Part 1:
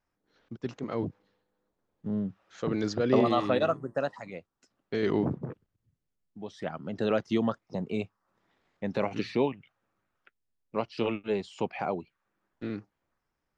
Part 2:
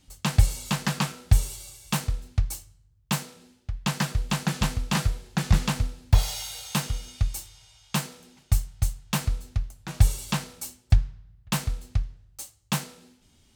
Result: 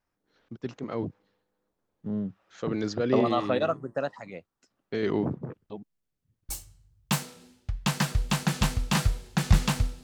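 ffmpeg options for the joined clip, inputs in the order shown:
ffmpeg -i cue0.wav -i cue1.wav -filter_complex "[0:a]apad=whole_dur=10.03,atrim=end=10.03,asplit=2[link_01][link_02];[link_01]atrim=end=5.702[link_03];[link_02]atrim=start=5.698:end=6.492,asetpts=PTS-STARTPTS,areverse[link_04];[1:a]atrim=start=2.488:end=6.03[link_05];[link_03][link_04]acrossfade=duration=0.004:curve1=hsin:curve2=hsin[link_06];[link_06][link_05]acrossfade=duration=0.004:curve1=hsin:curve2=hsin" out.wav

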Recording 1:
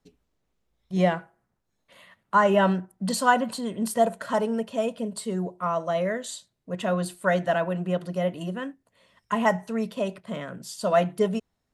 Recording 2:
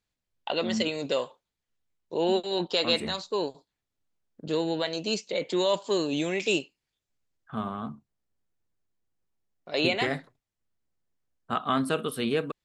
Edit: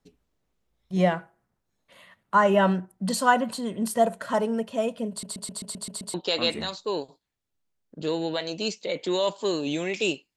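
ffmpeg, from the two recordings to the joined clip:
ffmpeg -i cue0.wav -i cue1.wav -filter_complex "[0:a]apad=whole_dur=10.36,atrim=end=10.36,asplit=8[link_01][link_02][link_03][link_04][link_05][link_06][link_07][link_08];[link_01]atrim=end=5.232[link_09];[link_02]atrim=start=5.098:end=5.232[link_10];[link_03]atrim=start=5.098:end=5.232[link_11];[link_04]atrim=start=5.098:end=5.232[link_12];[link_05]atrim=start=5.098:end=5.232[link_13];[link_06]atrim=start=5.098:end=5.232[link_14];[link_07]atrim=start=5.098:end=5.232[link_15];[link_08]atrim=start=5.098:end=5.232[link_16];[1:a]atrim=start=2.598:end=6.82[link_17];[link_09][link_10]acrossfade=duration=0.004:curve1=hsin:curve2=hsin[link_18];[link_18][link_11]acrossfade=duration=0.004:curve1=hsin:curve2=hsin[link_19];[link_19][link_12]acrossfade=duration=0.004:curve1=hsin:curve2=hsin[link_20];[link_20][link_13]acrossfade=duration=0.004:curve1=hsin:curve2=hsin[link_21];[link_21][link_14]acrossfade=duration=0.004:curve1=hsin:curve2=hsin[link_22];[link_22][link_15]acrossfade=duration=0.004:curve1=hsin:curve2=hsin[link_23];[link_23][link_16]acrossfade=duration=0.004:curve1=hsin:curve2=hsin[link_24];[link_24][link_17]acrossfade=duration=0.004:curve1=hsin:curve2=hsin" out.wav

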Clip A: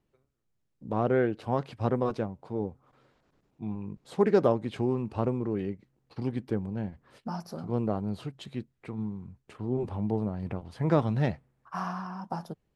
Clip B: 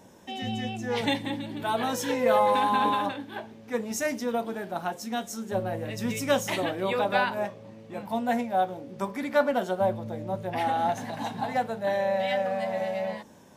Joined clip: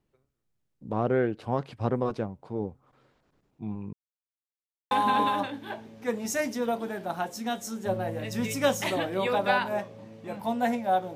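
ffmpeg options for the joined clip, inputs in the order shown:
ffmpeg -i cue0.wav -i cue1.wav -filter_complex "[0:a]apad=whole_dur=11.15,atrim=end=11.15,asplit=2[link_01][link_02];[link_01]atrim=end=3.93,asetpts=PTS-STARTPTS,afade=type=out:start_time=3.926:duration=0.004:curve=hsin[link_03];[link_02]atrim=start=3.93:end=4.91,asetpts=PTS-STARTPTS,volume=0[link_04];[1:a]atrim=start=2.57:end=8.81,asetpts=PTS-STARTPTS,afade=type=in:duration=0.004:curve=hsin[link_05];[link_03][link_04][link_05]concat=n=3:v=0:a=1" out.wav

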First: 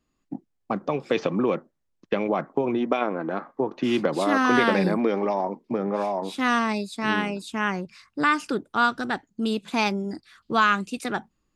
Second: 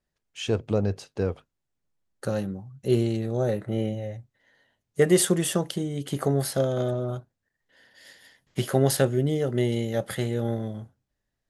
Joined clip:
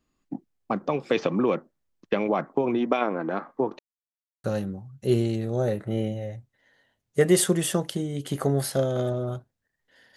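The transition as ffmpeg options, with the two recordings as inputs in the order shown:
ffmpeg -i cue0.wav -i cue1.wav -filter_complex "[0:a]apad=whole_dur=10.16,atrim=end=10.16,asplit=2[link_01][link_02];[link_01]atrim=end=3.79,asetpts=PTS-STARTPTS,afade=type=out:start_time=3.786:duration=0.004:curve=hsin[link_03];[link_02]atrim=start=3.79:end=4.44,asetpts=PTS-STARTPTS,volume=0[link_04];[1:a]atrim=start=2.25:end=7.97,asetpts=PTS-STARTPTS,afade=type=in:duration=0.004:curve=hsin[link_05];[link_03][link_04][link_05]concat=n=3:v=0:a=1" out.wav

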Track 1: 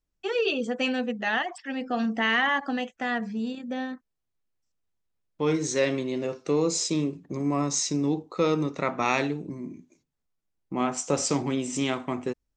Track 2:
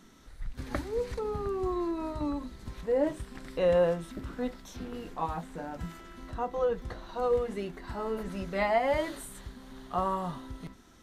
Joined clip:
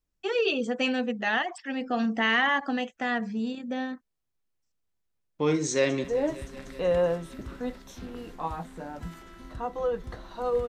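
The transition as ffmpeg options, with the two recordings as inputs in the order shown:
ffmpeg -i cue0.wav -i cue1.wav -filter_complex "[0:a]apad=whole_dur=10.68,atrim=end=10.68,atrim=end=6.042[link_01];[1:a]atrim=start=2.818:end=7.46[link_02];[link_01][link_02]acrossfade=duration=0.004:curve1=hsin:curve2=hsin,asplit=2[link_03][link_04];[link_04]afade=type=in:start_time=5.7:duration=0.01,afade=type=out:start_time=6.04:duration=0.01,aecho=0:1:190|380|570|760|950|1140|1330|1520|1710|1900|2090|2280:0.141254|0.113003|0.0904024|0.0723219|0.0578575|0.046286|0.0370288|0.0296231|0.0236984|0.0189588|0.015167|0.0121336[link_05];[link_03][link_05]amix=inputs=2:normalize=0" out.wav

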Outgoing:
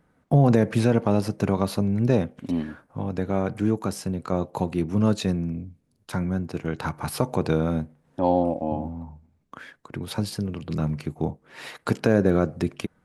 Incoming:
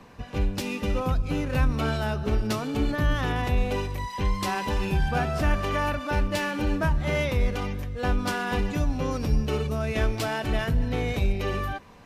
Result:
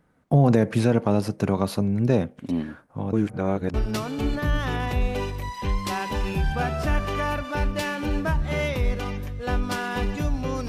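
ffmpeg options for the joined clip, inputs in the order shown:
ffmpeg -i cue0.wav -i cue1.wav -filter_complex "[0:a]apad=whole_dur=10.68,atrim=end=10.68,asplit=2[link_01][link_02];[link_01]atrim=end=3.132[link_03];[link_02]atrim=start=3.128:end=3.742,asetpts=PTS-STARTPTS,areverse[link_04];[1:a]atrim=start=2.298:end=9.24[link_05];[link_03][link_04]acrossfade=duration=0.004:curve1=hsin:curve2=hsin[link_06];[link_06][link_05]acrossfade=duration=0.004:curve1=hsin:curve2=hsin" out.wav

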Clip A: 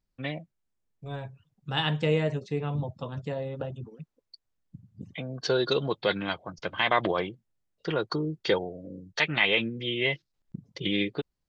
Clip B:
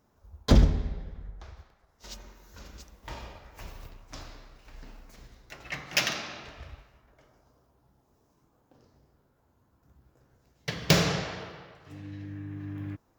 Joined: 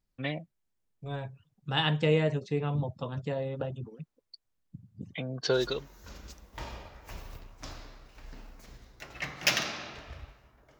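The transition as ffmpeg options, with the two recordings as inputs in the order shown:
ffmpeg -i cue0.wav -i cue1.wav -filter_complex "[0:a]apad=whole_dur=10.79,atrim=end=10.79,atrim=end=5.88,asetpts=PTS-STARTPTS[link_01];[1:a]atrim=start=1.86:end=7.29,asetpts=PTS-STARTPTS[link_02];[link_01][link_02]acrossfade=duration=0.52:curve1=qsin:curve2=qsin" out.wav

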